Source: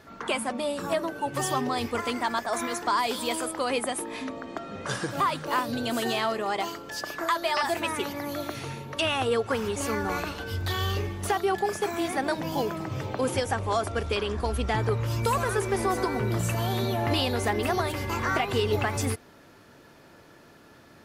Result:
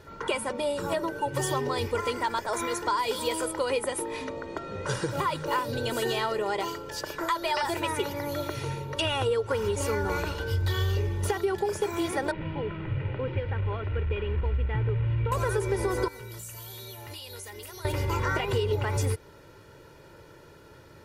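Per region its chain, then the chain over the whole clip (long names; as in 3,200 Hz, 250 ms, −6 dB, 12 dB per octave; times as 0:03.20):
0:12.31–0:15.32: linear delta modulator 32 kbit/s, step −27.5 dBFS + Butterworth low-pass 2,700 Hz + parametric band 800 Hz −10.5 dB 2.8 octaves
0:16.08–0:17.85: first-order pre-emphasis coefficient 0.9 + downward compressor 3 to 1, threshold −39 dBFS
whole clip: low-shelf EQ 370 Hz +6.5 dB; comb filter 2.1 ms, depth 67%; downward compressor, threshold −21 dBFS; level −2 dB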